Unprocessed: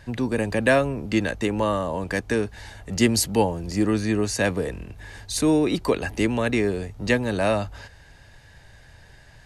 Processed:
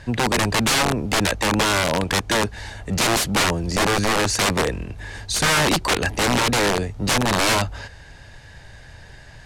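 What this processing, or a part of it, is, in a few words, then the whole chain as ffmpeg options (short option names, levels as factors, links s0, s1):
overflowing digital effects unit: -af "aeval=exprs='(mod(8.91*val(0)+1,2)-1)/8.91':c=same,lowpass=9900,volume=2.11"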